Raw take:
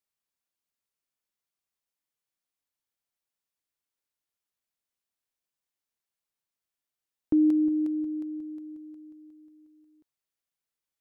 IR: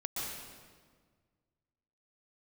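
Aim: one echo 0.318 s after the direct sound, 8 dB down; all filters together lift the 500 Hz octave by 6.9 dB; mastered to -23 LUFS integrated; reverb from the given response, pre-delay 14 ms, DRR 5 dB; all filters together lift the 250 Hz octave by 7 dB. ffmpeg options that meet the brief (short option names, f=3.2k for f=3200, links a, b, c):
-filter_complex "[0:a]equalizer=f=250:t=o:g=7.5,equalizer=f=500:t=o:g=4.5,aecho=1:1:318:0.398,asplit=2[a][b];[1:a]atrim=start_sample=2205,adelay=14[c];[b][c]afir=irnorm=-1:irlink=0,volume=-8dB[d];[a][d]amix=inputs=2:normalize=0,volume=-2.5dB"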